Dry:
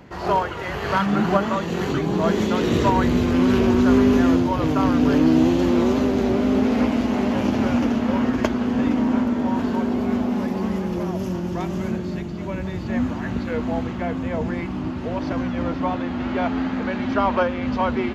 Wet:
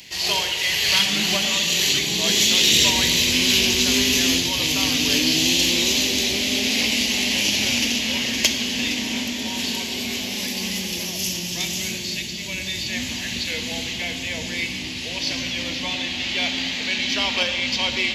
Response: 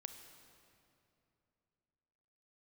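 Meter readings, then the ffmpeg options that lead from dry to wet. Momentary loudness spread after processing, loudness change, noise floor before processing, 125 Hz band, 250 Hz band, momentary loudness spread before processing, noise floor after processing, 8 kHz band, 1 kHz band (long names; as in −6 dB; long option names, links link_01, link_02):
10 LU, +2.0 dB, −29 dBFS, −8.5 dB, −9.0 dB, 9 LU, −30 dBFS, can't be measured, −9.5 dB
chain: -filter_complex "[0:a]aexciter=amount=14.9:drive=9.2:freq=2200[link_01];[1:a]atrim=start_sample=2205,asetrate=74970,aresample=44100[link_02];[link_01][link_02]afir=irnorm=-1:irlink=0"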